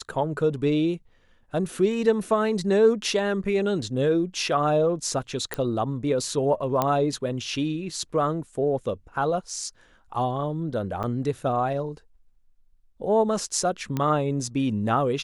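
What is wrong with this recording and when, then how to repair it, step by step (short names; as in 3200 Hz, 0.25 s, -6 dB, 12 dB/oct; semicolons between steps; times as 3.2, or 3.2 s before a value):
5.54 pop -12 dBFS
6.82 pop -9 dBFS
11.03–11.04 gap 7.7 ms
13.97 pop -14 dBFS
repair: de-click; interpolate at 11.03, 7.7 ms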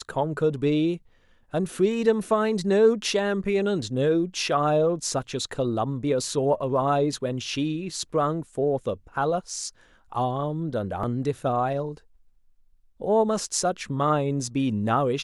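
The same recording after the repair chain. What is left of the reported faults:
13.97 pop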